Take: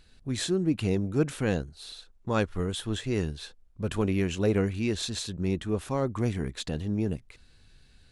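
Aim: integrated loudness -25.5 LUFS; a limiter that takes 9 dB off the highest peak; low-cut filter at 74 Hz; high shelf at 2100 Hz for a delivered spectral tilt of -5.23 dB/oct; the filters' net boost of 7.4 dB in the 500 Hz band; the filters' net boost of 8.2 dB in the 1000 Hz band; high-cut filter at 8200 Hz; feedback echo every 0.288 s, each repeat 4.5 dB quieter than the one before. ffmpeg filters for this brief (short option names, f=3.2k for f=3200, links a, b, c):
-af "highpass=74,lowpass=8.2k,equalizer=f=500:t=o:g=7.5,equalizer=f=1k:t=o:g=7,highshelf=f=2.1k:g=5,alimiter=limit=-15.5dB:level=0:latency=1,aecho=1:1:288|576|864|1152|1440|1728|2016|2304|2592:0.596|0.357|0.214|0.129|0.0772|0.0463|0.0278|0.0167|0.01,volume=1dB"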